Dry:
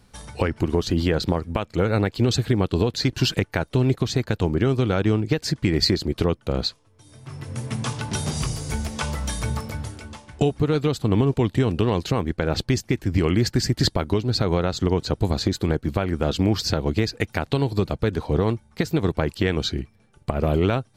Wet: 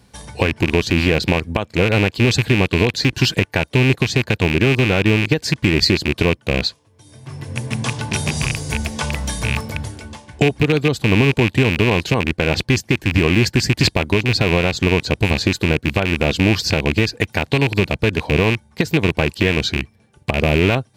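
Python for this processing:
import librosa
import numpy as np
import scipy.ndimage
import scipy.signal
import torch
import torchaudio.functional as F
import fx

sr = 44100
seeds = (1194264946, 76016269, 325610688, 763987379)

y = fx.rattle_buzz(x, sr, strikes_db=-23.0, level_db=-12.0)
y = scipy.signal.sosfilt(scipy.signal.butter(2, 52.0, 'highpass', fs=sr, output='sos'), y)
y = fx.notch(y, sr, hz=1300.0, q=7.8)
y = y * 10.0 ** (4.5 / 20.0)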